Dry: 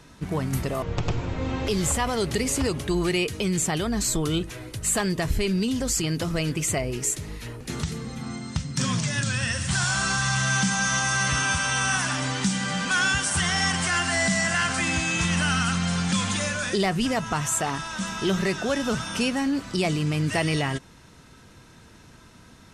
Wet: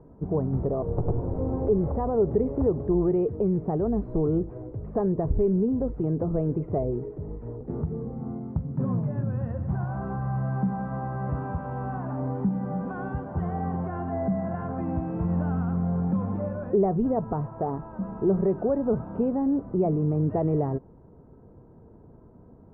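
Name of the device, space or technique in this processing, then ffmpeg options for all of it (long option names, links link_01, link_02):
under water: -af "lowpass=frequency=820:width=0.5412,lowpass=frequency=820:width=1.3066,equalizer=frequency=430:width_type=o:width=0.44:gain=6"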